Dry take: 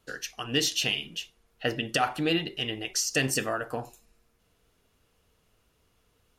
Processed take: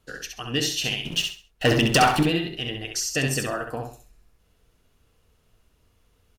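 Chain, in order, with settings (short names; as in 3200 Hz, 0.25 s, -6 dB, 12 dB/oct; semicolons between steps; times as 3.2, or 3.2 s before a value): low shelf 120 Hz +8 dB; 1.05–2.23 sample leveller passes 3; on a send: feedback echo 66 ms, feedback 28%, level -5 dB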